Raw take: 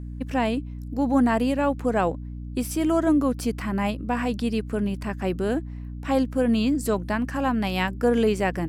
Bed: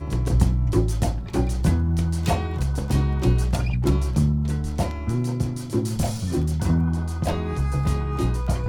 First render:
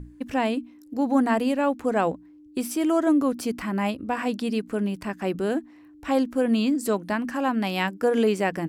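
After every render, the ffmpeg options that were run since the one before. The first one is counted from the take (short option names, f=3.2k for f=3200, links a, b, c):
-af "bandreject=f=60:t=h:w=6,bandreject=f=120:t=h:w=6,bandreject=f=180:t=h:w=6,bandreject=f=240:t=h:w=6"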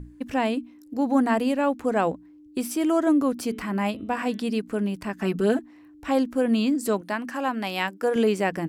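-filter_complex "[0:a]asettb=1/sr,asplit=3[a][b][c];[a]atrim=end=3.344[d];[b]atrim=start=3.34:end=4.44,asetpts=PTS-STARTPTS,afade=t=in:d=0.004:c=qsin,afade=t=out:st=1.096:d=0.004:c=qsin,bandreject=f=217.9:t=h:w=4,bandreject=f=435.8:t=h:w=4,bandreject=f=653.7:t=h:w=4,bandreject=f=871.6:t=h:w=4,bandreject=f=1.0895k:t=h:w=4,bandreject=f=1.3074k:t=h:w=4,bandreject=f=1.5253k:t=h:w=4,bandreject=f=1.7432k:t=h:w=4,bandreject=f=1.9611k:t=h:w=4,bandreject=f=2.179k:t=h:w=4,bandreject=f=2.3969k:t=h:w=4,bandreject=f=2.6148k:t=h:w=4,bandreject=f=2.8327k:t=h:w=4,bandreject=f=3.0506k:t=h:w=4,bandreject=f=3.2685k:t=h:w=4,bandreject=f=3.4864k:t=h:w=4,bandreject=f=3.7043k:t=h:w=4,bandreject=f=3.9222k:t=h:w=4[e];[c]atrim=start=4.436[f];[d][e]acrossfade=d=0.004:c1=hsin:c2=qsin[g];[g][f]acrossfade=d=0.004:c1=qsin:c2=hsin,asettb=1/sr,asplit=3[h][i][j];[h]atrim=end=5.184[k];[i]atrim=start=5.18:end=5.59,asetpts=PTS-STARTPTS,afade=t=in:d=0.004:c=qsin,afade=t=out:st=0.406:d=0.004:c=qsin,aecho=1:1:4.6:0.87,atrim=end_sample=18081[l];[j]atrim=start=5.586[m];[k][l]acrossfade=d=0.004:c1=hsin:c2=qsin[n];[n][m]acrossfade=d=0.004:c1=qsin:c2=hsin,asettb=1/sr,asplit=3[o][p][q];[o]atrim=end=7.014[r];[p]atrim=start=7.01:end=8.16,asetpts=PTS-STARTPTS,afade=t=in:d=0.004:c=qsin,afade=t=out:st=1.146:d=0.004:c=qsin,highpass=f=350:p=1[s];[q]atrim=start=8.156[t];[r][s]acrossfade=d=0.004:c1=hsin:c2=qsin[u];[u][t]acrossfade=d=0.004:c1=qsin:c2=hsin"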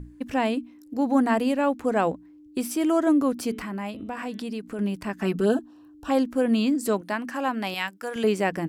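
-filter_complex "[0:a]asettb=1/sr,asplit=3[a][b][c];[a]atrim=end=3.594[d];[b]atrim=start=3.59:end=4.79,asetpts=PTS-STARTPTS,afade=t=in:d=0.004:c=qsin,afade=t=out:st=1.196:d=0.004:c=qsin,acompressor=threshold=-31dB:ratio=2.5:attack=3.2:release=140:knee=1:detection=peak[e];[c]atrim=start=4.786[f];[d][e]acrossfade=d=0.004:c1=hsin:c2=qsin[g];[g][f]acrossfade=d=0.004:c1=qsin:c2=hsin,asettb=1/sr,asplit=3[h][i][j];[h]atrim=end=5.454[k];[i]atrim=start=5.45:end=6.1,asetpts=PTS-STARTPTS,afade=t=in:d=0.004:c=qsin,afade=t=out:st=0.646:d=0.004:c=qsin,asuperstop=centerf=2100:order=4:qfactor=1.9[l];[j]atrim=start=6.096[m];[k][l]acrossfade=d=0.004:c1=hsin:c2=qsin[n];[n][m]acrossfade=d=0.004:c1=qsin:c2=hsin,asettb=1/sr,asplit=3[o][p][q];[o]atrim=end=7.744[r];[p]atrim=start=7.74:end=8.24,asetpts=PTS-STARTPTS,afade=t=in:d=0.004:c=qsin,afade=t=out:st=0.496:d=0.004:c=qsin,equalizer=f=380:w=0.62:g=-11.5[s];[q]atrim=start=8.236[t];[r][s]acrossfade=d=0.004:c1=hsin:c2=qsin[u];[u][t]acrossfade=d=0.004:c1=qsin:c2=hsin"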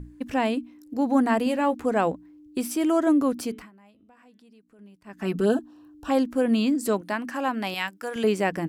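-filter_complex "[0:a]asettb=1/sr,asplit=3[a][b][c];[a]atrim=end=1.454[d];[b]atrim=start=1.45:end=1.86,asetpts=PTS-STARTPTS,afade=t=in:d=0.004:c=qsin,afade=t=out:st=0.406:d=0.004:c=qsin,asplit=2[e][f];[f]adelay=13,volume=-6.5dB[g];[e][g]amix=inputs=2:normalize=0,atrim=end_sample=18081[h];[c]atrim=start=1.856[i];[d][h]acrossfade=d=0.004:c1=hsin:c2=qsin[j];[j][i]acrossfade=d=0.004:c1=qsin:c2=hsin,asplit=3[k][l][m];[k]atrim=end=3.71,asetpts=PTS-STARTPTS,afade=t=out:st=3.4:d=0.31:silence=0.0749894[n];[l]atrim=start=3.71:end=5.04,asetpts=PTS-STARTPTS,volume=-22.5dB[o];[m]atrim=start=5.04,asetpts=PTS-STARTPTS,afade=t=in:d=0.31:silence=0.0749894[p];[n][o][p]concat=n=3:v=0:a=1"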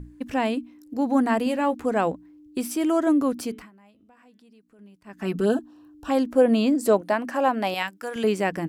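-filter_complex "[0:a]asettb=1/sr,asplit=3[a][b][c];[a]atrim=end=6.264[d];[b]atrim=start=6.26:end=7.83,asetpts=PTS-STARTPTS,afade=t=in:d=0.004:c=qsin,afade=t=out:st=1.566:d=0.004:c=qsin,equalizer=f=610:w=1.2:g=9[e];[c]atrim=start=7.826[f];[d][e]acrossfade=d=0.004:c1=hsin:c2=qsin[g];[g][f]acrossfade=d=0.004:c1=qsin:c2=hsin"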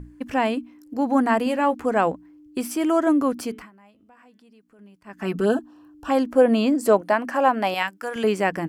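-af "equalizer=f=1.2k:w=0.6:g=4.5,bandreject=f=3.8k:w=13"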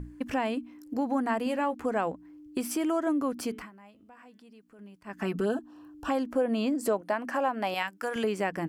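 -af "acompressor=threshold=-29dB:ratio=2.5"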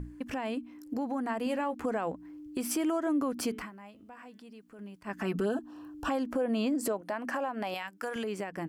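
-af "alimiter=level_in=2dB:limit=-24dB:level=0:latency=1:release=187,volume=-2dB,dynaudnorm=f=300:g=9:m=3.5dB"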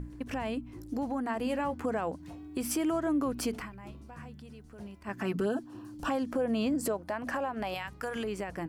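-filter_complex "[1:a]volume=-28.5dB[a];[0:a][a]amix=inputs=2:normalize=0"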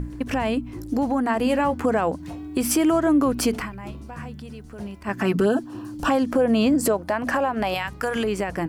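-af "volume=10.5dB"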